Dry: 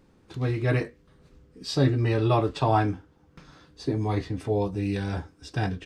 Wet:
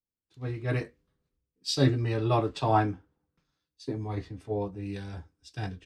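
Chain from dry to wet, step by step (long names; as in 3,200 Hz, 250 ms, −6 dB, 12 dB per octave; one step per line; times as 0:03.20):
multiband upward and downward expander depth 100%
level −5.5 dB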